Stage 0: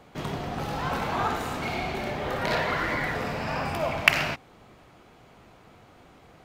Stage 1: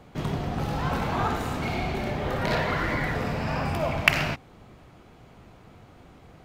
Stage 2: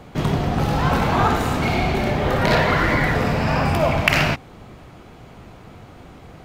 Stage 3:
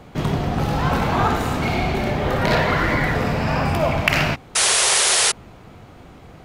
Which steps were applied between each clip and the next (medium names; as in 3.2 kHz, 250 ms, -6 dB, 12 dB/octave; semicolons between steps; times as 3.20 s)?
bass shelf 250 Hz +8.5 dB; trim -1 dB
loudness maximiser +8.5 dB
painted sound noise, 4.55–5.32 s, 350–11000 Hz -16 dBFS; trim -1 dB